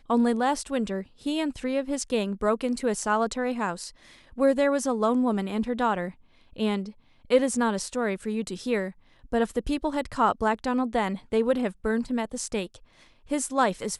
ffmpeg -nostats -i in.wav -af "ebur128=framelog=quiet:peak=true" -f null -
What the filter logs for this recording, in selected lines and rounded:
Integrated loudness:
  I:         -26.9 LUFS
  Threshold: -37.3 LUFS
Loudness range:
  LRA:         2.0 LU
  Threshold: -47.3 LUFS
  LRA low:   -28.2 LUFS
  LRA high:  -26.2 LUFS
True peak:
  Peak:       -8.2 dBFS